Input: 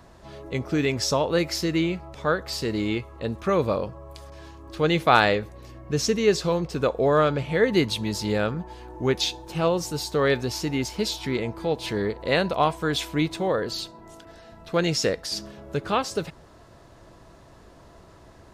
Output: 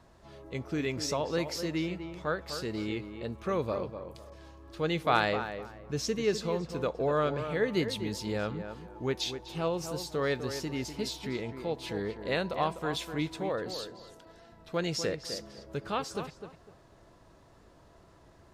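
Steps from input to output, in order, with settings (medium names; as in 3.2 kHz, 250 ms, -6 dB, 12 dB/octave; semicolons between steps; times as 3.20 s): tape echo 250 ms, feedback 27%, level -8 dB, low-pass 2 kHz; wow and flutter 29 cents; trim -8.5 dB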